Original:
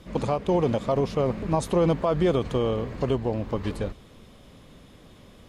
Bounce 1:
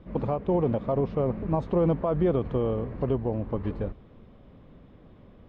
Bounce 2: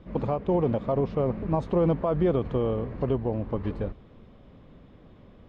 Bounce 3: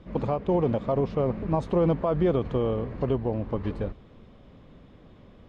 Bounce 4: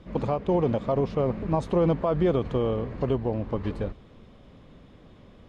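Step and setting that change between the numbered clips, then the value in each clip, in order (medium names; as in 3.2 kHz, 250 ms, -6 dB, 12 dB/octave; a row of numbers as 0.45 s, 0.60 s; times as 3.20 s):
tape spacing loss, at 10 kHz: 45 dB, 36 dB, 28 dB, 20 dB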